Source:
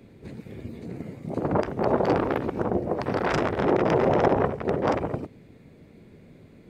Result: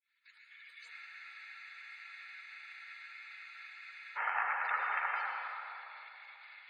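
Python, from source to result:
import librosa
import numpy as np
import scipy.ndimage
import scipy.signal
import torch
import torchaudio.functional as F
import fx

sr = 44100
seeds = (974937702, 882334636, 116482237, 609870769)

p1 = fx.fade_in_head(x, sr, length_s=1.58)
p2 = scipy.signal.sosfilt(scipy.signal.butter(4, 1400.0, 'highpass', fs=sr, output='sos'), p1)
p3 = fx.env_lowpass_down(p2, sr, base_hz=3000.0, full_db=-35.5)
p4 = fx.spec_gate(p3, sr, threshold_db=-15, keep='strong')
p5 = p4 + 0.41 * np.pad(p4, (int(2.3 * sr / 1000.0), 0))[:len(p4)]
p6 = fx.over_compress(p5, sr, threshold_db=-43.0, ratio=-1.0)
p7 = fx.chopper(p6, sr, hz=3.9, depth_pct=60, duty_pct=75)
p8 = p7 + fx.echo_single(p7, sr, ms=105, db=-13.0, dry=0)
p9 = fx.rev_plate(p8, sr, seeds[0], rt60_s=2.9, hf_ratio=0.55, predelay_ms=90, drr_db=-1.5)
p10 = fx.spec_freeze(p9, sr, seeds[1], at_s=0.94, hold_s=3.22)
y = p10 * 10.0 ** (6.0 / 20.0)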